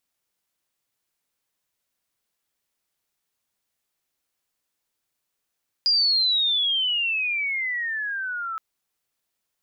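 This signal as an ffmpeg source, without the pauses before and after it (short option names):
-f lavfi -i "aevalsrc='pow(10,(-16.5-11*t/2.72)/20)*sin(2*PI*4900*2.72/log(1300/4900)*(exp(log(1300/4900)*t/2.72)-1))':d=2.72:s=44100"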